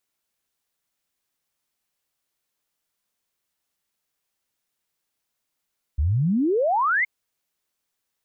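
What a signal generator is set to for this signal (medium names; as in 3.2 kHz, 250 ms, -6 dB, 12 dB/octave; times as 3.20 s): log sweep 66 Hz -> 2.2 kHz 1.07 s -18 dBFS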